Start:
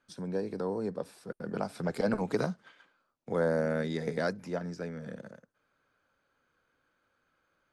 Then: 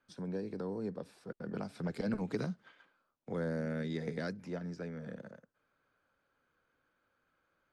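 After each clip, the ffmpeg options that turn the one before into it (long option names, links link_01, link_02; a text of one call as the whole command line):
ffmpeg -i in.wav -filter_complex "[0:a]highshelf=frequency=6800:gain=-11.5,acrossover=split=380|1700[link_01][link_02][link_03];[link_02]acompressor=threshold=-42dB:ratio=6[link_04];[link_01][link_04][link_03]amix=inputs=3:normalize=0,volume=-2.5dB" out.wav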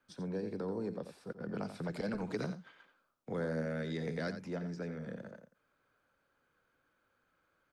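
ffmpeg -i in.wav -filter_complex "[0:a]acrossover=split=380[link_01][link_02];[link_01]alimiter=level_in=12dB:limit=-24dB:level=0:latency=1,volume=-12dB[link_03];[link_03][link_02]amix=inputs=2:normalize=0,aecho=1:1:87:0.316,volume=1dB" out.wav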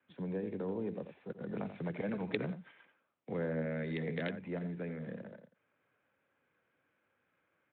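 ffmpeg -i in.wav -filter_complex "[0:a]acrossover=split=130|1700[link_01][link_02][link_03];[link_03]acrusher=bits=5:mix=0:aa=0.000001[link_04];[link_01][link_02][link_04]amix=inputs=3:normalize=0,aexciter=amount=13.1:drive=4.1:freq=2100" -ar 8000 -c:a libspeex -b:a 24k out.spx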